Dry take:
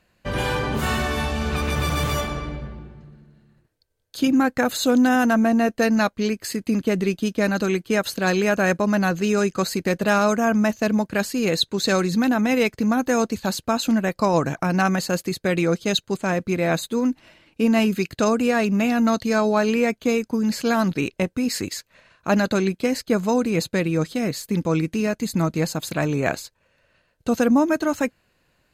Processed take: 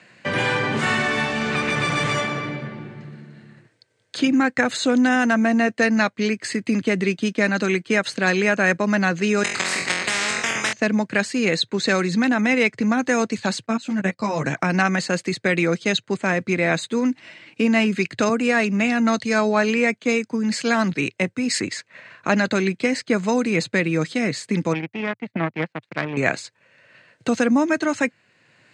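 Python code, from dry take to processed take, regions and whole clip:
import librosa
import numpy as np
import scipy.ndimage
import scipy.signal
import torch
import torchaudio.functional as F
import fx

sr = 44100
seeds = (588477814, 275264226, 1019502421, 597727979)

y = fx.chain(x, sr, fx.level_steps(step_db=19),
    fx.room_flutter(wall_m=3.9, rt60_s=0.36),
    fx.spectral_comp(ratio=10.0), at=(9.43, 10.73))
y = fx.chain(y, sr, fx.low_shelf(hz=170.0, db=8.0),
    fx.level_steps(step_db=20),
    fx.ensemble(), at=(13.66, 14.44))
y = fx.chain(y, sr, fx.high_shelf(hz=7200.0, db=5.0),
    fx.band_widen(depth_pct=70), at=(18.29, 21.6))
y = fx.chain(y, sr, fx.cheby1_lowpass(hz=2700.0, order=3),
    fx.power_curve(exponent=2.0), at=(24.73, 26.17))
y = scipy.signal.sosfilt(scipy.signal.cheby1(4, 1.0, [110.0, 8600.0], 'bandpass', fs=sr, output='sos'), y)
y = fx.peak_eq(y, sr, hz=2000.0, db=9.0, octaves=0.74)
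y = fx.band_squash(y, sr, depth_pct=40)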